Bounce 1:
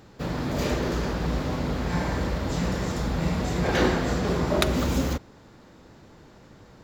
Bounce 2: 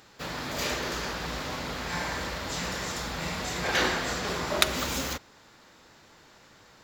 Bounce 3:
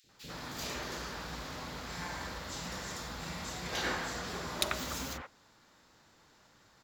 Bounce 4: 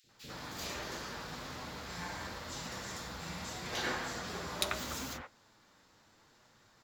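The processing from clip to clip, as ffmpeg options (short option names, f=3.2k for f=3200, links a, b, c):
-af "tiltshelf=f=680:g=-8.5,volume=-4dB"
-filter_complex "[0:a]acrossover=split=470|2400[a][b][c];[a]adelay=40[d];[b]adelay=90[e];[d][e][c]amix=inputs=3:normalize=0,volume=-7dB"
-af "flanger=delay=8.2:depth=2.1:regen=-48:speed=0.77:shape=sinusoidal,volume=2.5dB"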